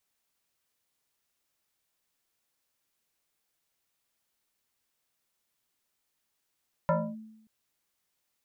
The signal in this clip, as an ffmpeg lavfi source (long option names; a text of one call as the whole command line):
ffmpeg -f lavfi -i "aevalsrc='0.1*pow(10,-3*t/0.85)*sin(2*PI*219*t+2.6*clip(1-t/0.27,0,1)*sin(2*PI*1.76*219*t))':duration=0.58:sample_rate=44100" out.wav